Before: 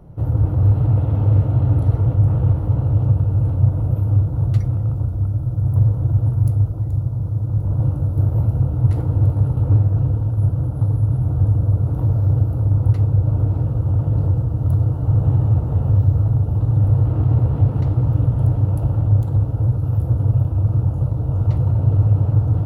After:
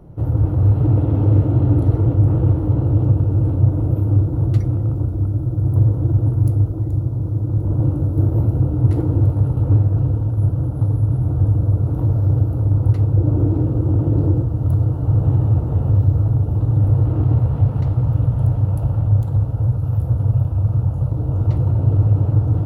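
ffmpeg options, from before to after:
ffmpeg -i in.wav -af "asetnsamples=nb_out_samples=441:pad=0,asendcmd='0.81 equalizer g 11.5;9.2 equalizer g 5.5;13.16 equalizer g 14.5;14.43 equalizer g 4.5;17.37 equalizer g -3.5;21.12 equalizer g 4.5',equalizer=frequency=330:width_type=o:width=0.78:gain=5" out.wav

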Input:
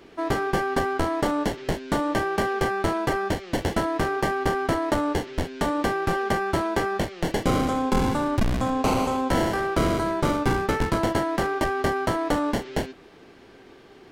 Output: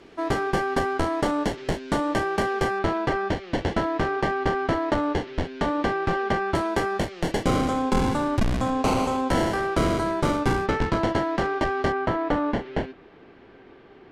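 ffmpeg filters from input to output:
ffmpeg -i in.wav -af "asetnsamples=nb_out_samples=441:pad=0,asendcmd='2.79 lowpass f 4500;6.55 lowpass f 11000;10.66 lowpass f 5000;11.92 lowpass f 2700',lowpass=10000" out.wav

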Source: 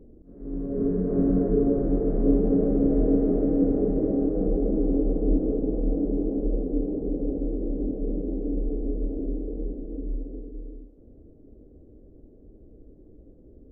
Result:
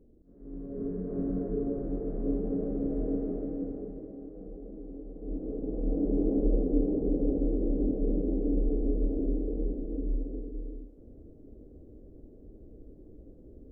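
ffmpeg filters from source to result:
ffmpeg -i in.wav -af "volume=10dB,afade=type=out:start_time=3.17:duration=0.93:silence=0.316228,afade=type=in:start_time=5.14:duration=0.58:silence=0.251189,afade=type=in:start_time=5.72:duration=0.61:silence=0.421697" out.wav

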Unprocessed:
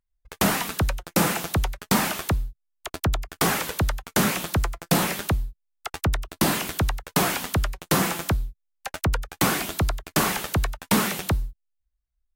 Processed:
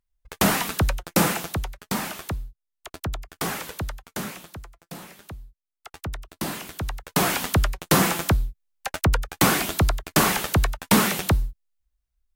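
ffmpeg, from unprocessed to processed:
ffmpeg -i in.wav -af "volume=23dB,afade=type=out:start_time=1.19:duration=0.46:silence=0.421697,afade=type=out:start_time=3.71:duration=0.95:silence=0.237137,afade=type=in:start_time=5.16:duration=1.05:silence=0.298538,afade=type=in:start_time=6.78:duration=0.67:silence=0.281838" out.wav

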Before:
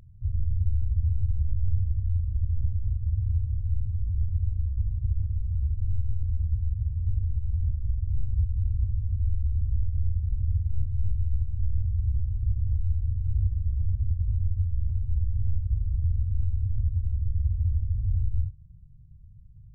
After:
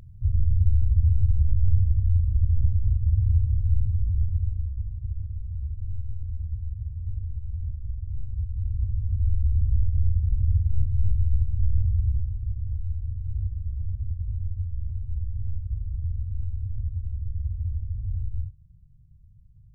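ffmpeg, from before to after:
ffmpeg -i in.wav -af "volume=13.5dB,afade=type=out:start_time=3.84:duration=1.03:silence=0.334965,afade=type=in:start_time=8.4:duration=1.11:silence=0.375837,afade=type=out:start_time=11.91:duration=0.53:silence=0.421697" out.wav

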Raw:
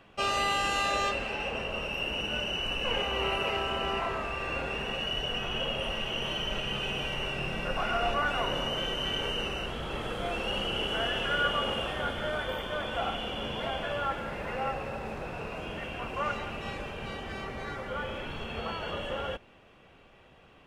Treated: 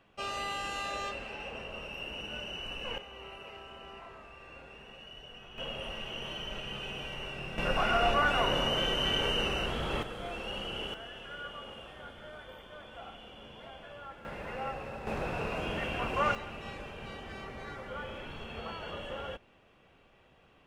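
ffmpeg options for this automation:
ffmpeg -i in.wav -af "asetnsamples=nb_out_samples=441:pad=0,asendcmd='2.98 volume volume -17dB;5.58 volume volume -7dB;7.58 volume volume 2dB;10.03 volume volume -6.5dB;10.94 volume volume -15dB;14.25 volume volume -5dB;15.07 volume volume 3dB;16.35 volume volume -5.5dB',volume=-8dB" out.wav

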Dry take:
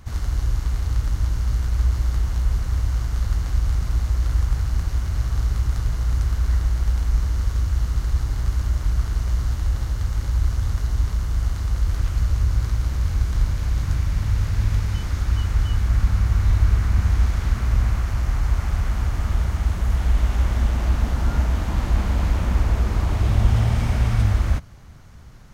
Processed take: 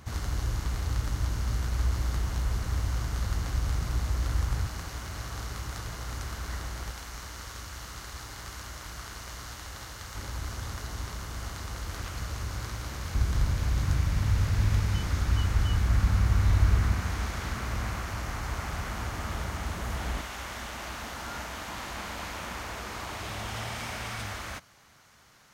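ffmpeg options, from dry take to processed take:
ffmpeg -i in.wav -af "asetnsamples=nb_out_samples=441:pad=0,asendcmd='4.67 highpass f 430;6.91 highpass f 930;10.15 highpass f 400;13.15 highpass f 95;16.94 highpass f 320;20.21 highpass f 1200',highpass=frequency=140:poles=1" out.wav

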